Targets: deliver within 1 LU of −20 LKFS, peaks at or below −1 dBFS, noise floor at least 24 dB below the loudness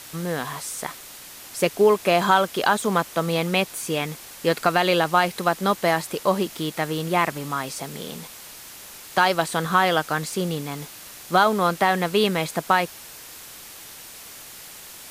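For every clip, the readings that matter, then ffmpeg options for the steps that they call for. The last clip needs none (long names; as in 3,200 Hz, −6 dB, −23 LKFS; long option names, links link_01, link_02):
background noise floor −42 dBFS; target noise floor −47 dBFS; integrated loudness −22.5 LKFS; sample peak −5.0 dBFS; target loudness −20.0 LKFS
→ -af "afftdn=noise_reduction=6:noise_floor=-42"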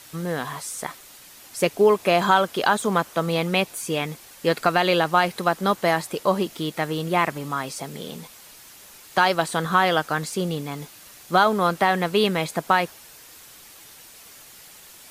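background noise floor −47 dBFS; integrated loudness −22.5 LKFS; sample peak −5.0 dBFS; target loudness −20.0 LKFS
→ -af "volume=2.5dB"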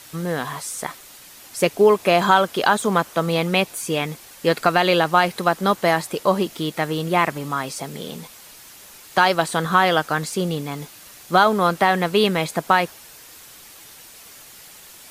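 integrated loudness −20.0 LKFS; sample peak −2.5 dBFS; background noise floor −44 dBFS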